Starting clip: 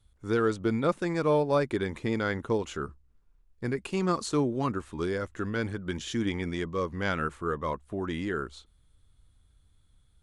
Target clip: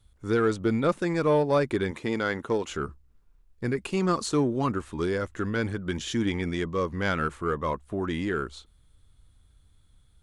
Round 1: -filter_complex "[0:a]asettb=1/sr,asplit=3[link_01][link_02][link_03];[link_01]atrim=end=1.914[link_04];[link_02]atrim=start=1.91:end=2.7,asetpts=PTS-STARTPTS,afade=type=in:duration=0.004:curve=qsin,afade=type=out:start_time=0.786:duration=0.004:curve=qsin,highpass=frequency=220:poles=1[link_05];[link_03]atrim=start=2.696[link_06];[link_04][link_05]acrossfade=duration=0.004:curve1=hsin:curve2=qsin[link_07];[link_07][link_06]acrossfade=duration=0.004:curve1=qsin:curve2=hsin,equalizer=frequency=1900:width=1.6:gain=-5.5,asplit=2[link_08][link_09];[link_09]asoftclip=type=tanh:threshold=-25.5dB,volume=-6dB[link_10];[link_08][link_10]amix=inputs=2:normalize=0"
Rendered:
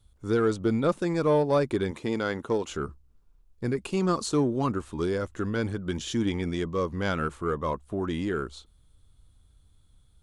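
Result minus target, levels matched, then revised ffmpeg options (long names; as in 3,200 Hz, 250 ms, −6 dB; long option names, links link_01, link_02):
2,000 Hz band −3.5 dB
-filter_complex "[0:a]asettb=1/sr,asplit=3[link_01][link_02][link_03];[link_01]atrim=end=1.914[link_04];[link_02]atrim=start=1.91:end=2.7,asetpts=PTS-STARTPTS,afade=type=in:duration=0.004:curve=qsin,afade=type=out:start_time=0.786:duration=0.004:curve=qsin,highpass=frequency=220:poles=1[link_05];[link_03]atrim=start=2.696[link_06];[link_04][link_05]acrossfade=duration=0.004:curve1=hsin:curve2=qsin[link_07];[link_07][link_06]acrossfade=duration=0.004:curve1=qsin:curve2=hsin,asplit=2[link_08][link_09];[link_09]asoftclip=type=tanh:threshold=-25.5dB,volume=-6dB[link_10];[link_08][link_10]amix=inputs=2:normalize=0"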